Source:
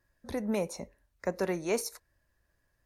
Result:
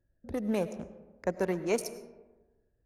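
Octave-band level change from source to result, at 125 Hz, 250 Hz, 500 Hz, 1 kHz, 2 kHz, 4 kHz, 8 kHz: +1.5, +1.5, +1.0, +0.5, −0.5, −2.5, −3.5 decibels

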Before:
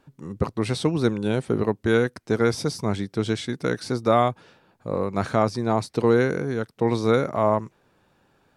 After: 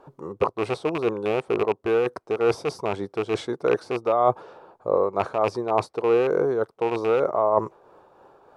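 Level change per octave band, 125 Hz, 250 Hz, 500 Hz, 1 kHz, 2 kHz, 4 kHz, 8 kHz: −10.5 dB, −6.0 dB, +1.5 dB, +1.0 dB, −3.5 dB, −5.5 dB, can't be measured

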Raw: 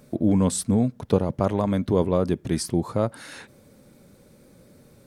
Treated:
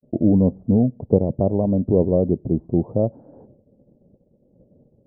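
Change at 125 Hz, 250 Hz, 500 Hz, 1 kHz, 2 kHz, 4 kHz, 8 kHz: +4.0 dB, +4.0 dB, +4.0 dB, −4.5 dB, below −35 dB, below −40 dB, below −40 dB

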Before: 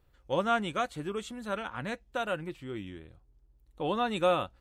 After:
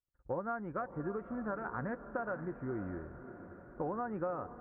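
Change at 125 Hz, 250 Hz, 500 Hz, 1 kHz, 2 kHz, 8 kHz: −2.5 dB, −3.5 dB, −7.0 dB, −8.0 dB, −8.0 dB, below −30 dB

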